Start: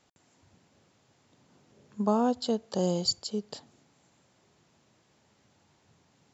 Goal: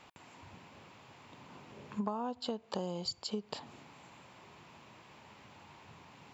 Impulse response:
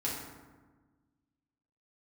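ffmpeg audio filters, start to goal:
-af "equalizer=f=1000:t=o:w=0.67:g=9,equalizer=f=2500:t=o:w=0.67:g=8,equalizer=f=6300:t=o:w=0.67:g=-7,acompressor=threshold=0.00891:ratio=12,volume=2.37"

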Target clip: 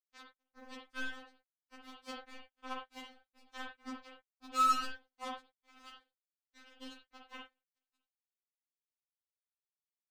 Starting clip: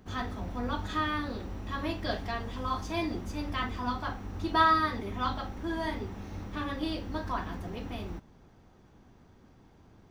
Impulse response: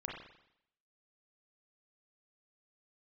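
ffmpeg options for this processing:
-filter_complex "[0:a]aeval=exprs='sgn(val(0))*max(abs(val(0))-0.00473,0)':c=same,acrusher=bits=3:mix=0:aa=0.5[s0];[1:a]atrim=start_sample=2205,atrim=end_sample=4410[s1];[s0][s1]afir=irnorm=-1:irlink=0,afftfilt=real='re*3.46*eq(mod(b,12),0)':imag='im*3.46*eq(mod(b,12),0)':win_size=2048:overlap=0.75,volume=0.596"

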